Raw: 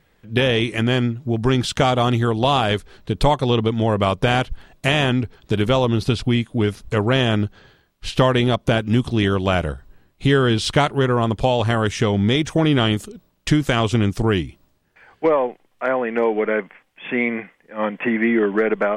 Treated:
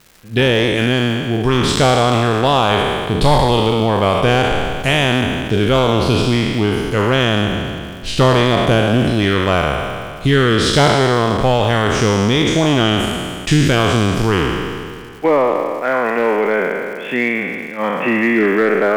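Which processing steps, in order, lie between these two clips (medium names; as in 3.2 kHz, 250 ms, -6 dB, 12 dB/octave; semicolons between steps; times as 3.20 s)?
spectral sustain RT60 2.09 s; crackle 430 per s -35 dBFS; in parallel at -10.5 dB: wavefolder -9 dBFS; on the sum: trim -1 dB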